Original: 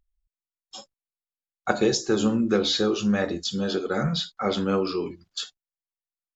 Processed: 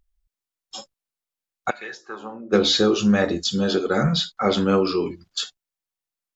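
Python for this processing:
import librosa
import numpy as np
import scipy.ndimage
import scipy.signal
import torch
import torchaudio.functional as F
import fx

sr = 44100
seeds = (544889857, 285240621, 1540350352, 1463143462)

y = fx.bandpass_q(x, sr, hz=fx.line((1.69, 2500.0), (2.52, 560.0)), q=4.0, at=(1.69, 2.52), fade=0.02)
y = F.gain(torch.from_numpy(y), 5.0).numpy()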